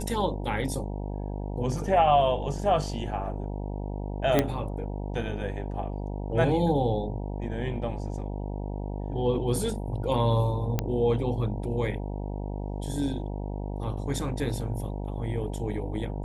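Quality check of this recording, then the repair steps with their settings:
buzz 50 Hz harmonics 19 -33 dBFS
4.39 pop -8 dBFS
10.79 pop -12 dBFS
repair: de-click; de-hum 50 Hz, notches 19

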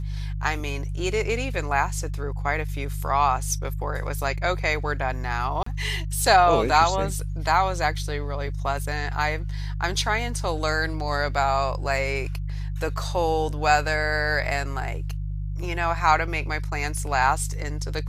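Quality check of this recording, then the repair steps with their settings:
hum 50 Hz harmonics 3 -29 dBFS
5.63–5.66 gap 34 ms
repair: de-hum 50 Hz, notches 3; interpolate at 5.63, 34 ms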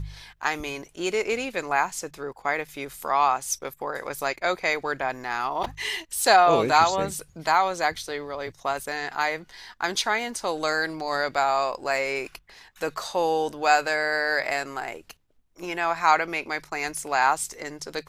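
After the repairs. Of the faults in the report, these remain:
none

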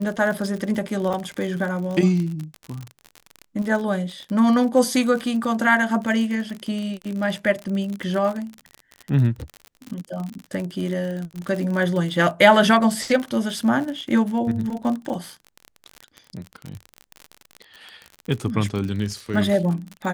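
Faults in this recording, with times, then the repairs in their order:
crackle 46/s -27 dBFS
1.13–1.14 gap 6.2 ms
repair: de-click; interpolate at 1.13, 6.2 ms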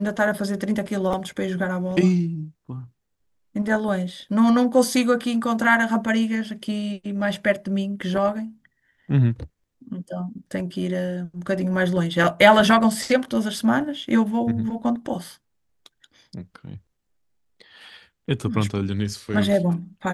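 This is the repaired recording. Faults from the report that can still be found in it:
none

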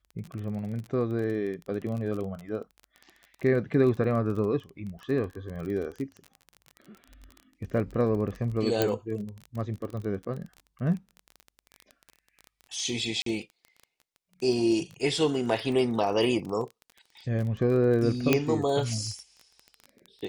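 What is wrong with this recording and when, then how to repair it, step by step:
crackle 24/s -34 dBFS
8.82 pop -9 dBFS
13.22–13.26 gap 43 ms
18.33 pop -7 dBFS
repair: de-click; interpolate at 13.22, 43 ms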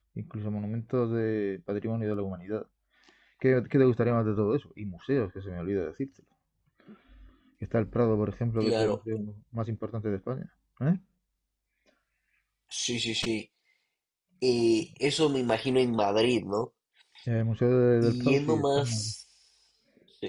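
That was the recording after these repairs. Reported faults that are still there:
none

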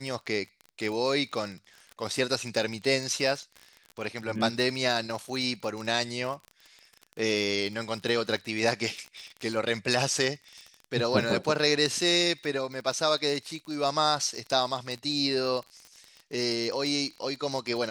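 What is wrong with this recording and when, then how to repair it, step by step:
crackle 36/s -34 dBFS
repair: de-click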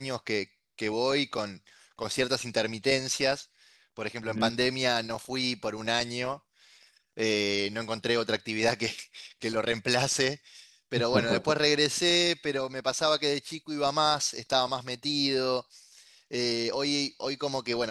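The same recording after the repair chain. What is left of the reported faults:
none

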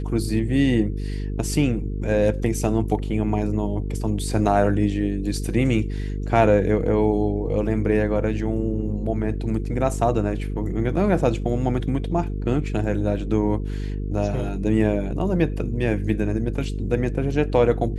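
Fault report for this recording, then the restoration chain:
buzz 50 Hz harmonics 9 -27 dBFS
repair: de-hum 50 Hz, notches 9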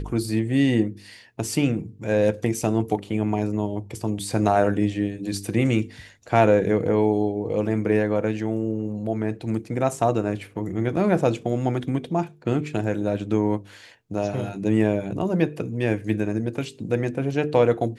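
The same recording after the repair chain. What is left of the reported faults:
none

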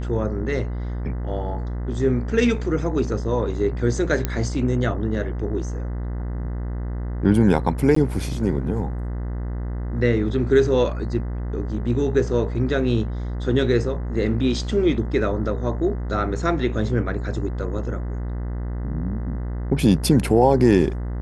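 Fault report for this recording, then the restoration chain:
buzz 60 Hz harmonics 34 -27 dBFS
4.25 pop -8 dBFS
7.95–7.96 gap 14 ms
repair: de-click; de-hum 60 Hz, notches 34; interpolate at 7.95, 14 ms

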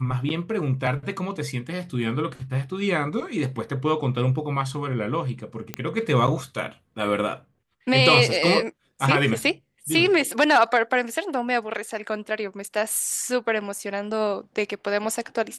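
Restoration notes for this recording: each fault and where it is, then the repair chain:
5.74 pop -12 dBFS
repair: de-click

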